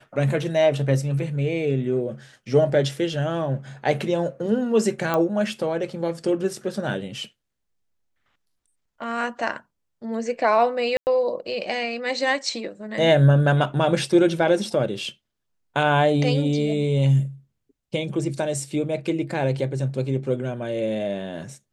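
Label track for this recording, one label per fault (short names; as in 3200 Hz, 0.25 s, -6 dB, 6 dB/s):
5.140000	5.140000	pop -10 dBFS
10.970000	11.070000	gap 99 ms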